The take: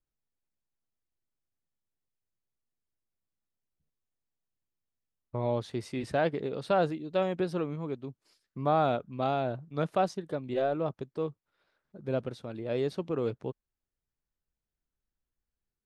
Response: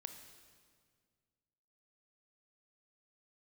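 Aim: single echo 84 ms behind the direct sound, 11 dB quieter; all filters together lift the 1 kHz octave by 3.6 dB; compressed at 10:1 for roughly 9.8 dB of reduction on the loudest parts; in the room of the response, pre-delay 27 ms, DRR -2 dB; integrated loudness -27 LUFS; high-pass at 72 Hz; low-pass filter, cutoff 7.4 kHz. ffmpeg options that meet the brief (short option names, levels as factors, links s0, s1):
-filter_complex "[0:a]highpass=72,lowpass=7400,equalizer=f=1000:t=o:g=5.5,acompressor=threshold=0.0398:ratio=10,aecho=1:1:84:0.282,asplit=2[s0][s1];[1:a]atrim=start_sample=2205,adelay=27[s2];[s1][s2]afir=irnorm=-1:irlink=0,volume=2[s3];[s0][s3]amix=inputs=2:normalize=0,volume=1.58"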